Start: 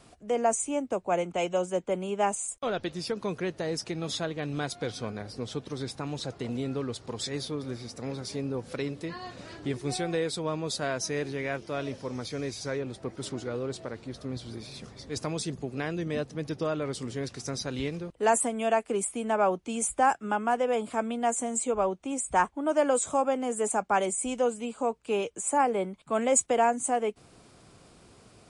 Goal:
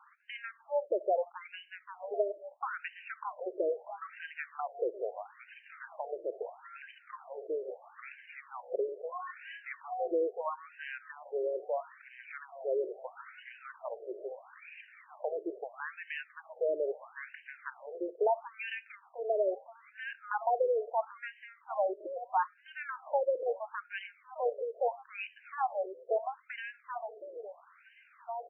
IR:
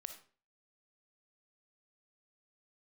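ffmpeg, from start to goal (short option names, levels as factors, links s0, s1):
-filter_complex "[0:a]asplit=2[s0][s1];[s1]adelay=1691,volume=0.126,highshelf=f=4000:g=-38[s2];[s0][s2]amix=inputs=2:normalize=0,acrossover=split=940|2800[s3][s4][s5];[s3]acompressor=threshold=0.0251:ratio=4[s6];[s4]acompressor=threshold=0.00708:ratio=4[s7];[s5]acompressor=threshold=0.00794:ratio=4[s8];[s6][s7][s8]amix=inputs=3:normalize=0,asplit=2[s9][s10];[1:a]atrim=start_sample=2205[s11];[s10][s11]afir=irnorm=-1:irlink=0,volume=0.562[s12];[s9][s12]amix=inputs=2:normalize=0,afftfilt=real='re*between(b*sr/1024,460*pow(2200/460,0.5+0.5*sin(2*PI*0.76*pts/sr))/1.41,460*pow(2200/460,0.5+0.5*sin(2*PI*0.76*pts/sr))*1.41)':imag='im*between(b*sr/1024,460*pow(2200/460,0.5+0.5*sin(2*PI*0.76*pts/sr))/1.41,460*pow(2200/460,0.5+0.5*sin(2*PI*0.76*pts/sr))*1.41)':win_size=1024:overlap=0.75,volume=1.41"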